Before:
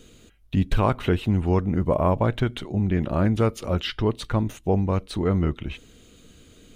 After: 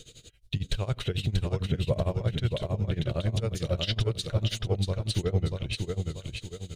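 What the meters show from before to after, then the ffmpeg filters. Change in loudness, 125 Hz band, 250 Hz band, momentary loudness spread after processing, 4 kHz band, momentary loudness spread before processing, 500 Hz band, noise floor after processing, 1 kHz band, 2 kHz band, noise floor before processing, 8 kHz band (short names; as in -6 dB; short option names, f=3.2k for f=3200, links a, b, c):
-6.0 dB, -3.0 dB, -10.5 dB, 6 LU, +2.5 dB, 5 LU, -7.0 dB, -54 dBFS, -14.0 dB, -5.5 dB, -53 dBFS, +3.5 dB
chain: -af "equalizer=f=125:t=o:w=1:g=9,equalizer=f=250:t=o:w=1:g=-9,equalizer=f=500:t=o:w=1:g=5,equalizer=f=1k:t=o:w=1:g=-8,equalizer=f=4k:t=o:w=1:g=10,equalizer=f=8k:t=o:w=1:g=7,alimiter=limit=-17dB:level=0:latency=1:release=34,tremolo=f=11:d=0.89,aecho=1:1:636|1272|1908|2544|3180:0.631|0.246|0.096|0.0374|0.0146"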